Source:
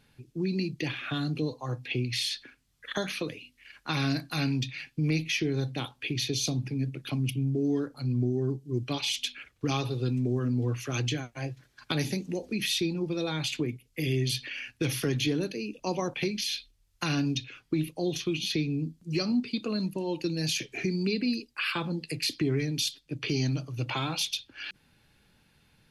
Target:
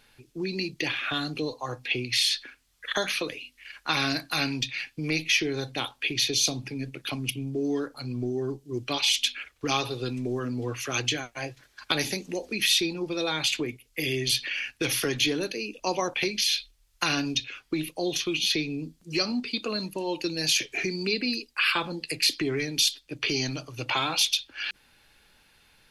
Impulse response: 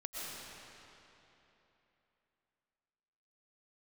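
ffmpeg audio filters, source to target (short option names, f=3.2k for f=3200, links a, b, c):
-af "equalizer=f=140:t=o:w=2.4:g=-14,volume=7dB"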